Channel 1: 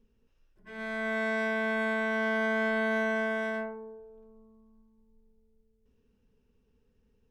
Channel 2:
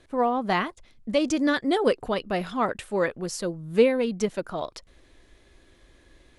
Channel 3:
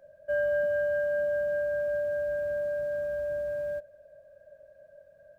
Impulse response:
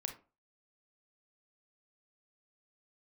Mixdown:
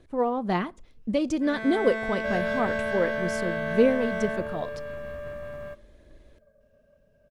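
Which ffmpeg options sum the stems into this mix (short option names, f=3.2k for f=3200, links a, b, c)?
-filter_complex "[0:a]alimiter=limit=-24dB:level=0:latency=1,adelay=750,volume=1dB[a];[1:a]tiltshelf=f=750:g=4.5,aphaser=in_gain=1:out_gain=1:delay=2.5:decay=0.28:speed=1.8:type=triangular,volume=-4.5dB,asplit=2[b][c];[c]volume=-15dB[d];[2:a]lowshelf=f=340:t=q:w=1.5:g=8.5,aeval=exprs='0.0891*(cos(1*acos(clip(val(0)/0.0891,-1,1)))-cos(1*PI/2))+0.0141*(cos(3*acos(clip(val(0)/0.0891,-1,1)))-cos(3*PI/2))+0.00398*(cos(5*acos(clip(val(0)/0.0891,-1,1)))-cos(5*PI/2))+0.00447*(cos(7*acos(clip(val(0)/0.0891,-1,1)))-cos(7*PI/2))+0.00355*(cos(8*acos(clip(val(0)/0.0891,-1,1)))-cos(8*PI/2))':c=same,adelay=1950,volume=-2dB,asplit=2[e][f];[f]volume=-8dB[g];[3:a]atrim=start_sample=2205[h];[d][g]amix=inputs=2:normalize=0[i];[i][h]afir=irnorm=-1:irlink=0[j];[a][b][e][j]amix=inputs=4:normalize=0"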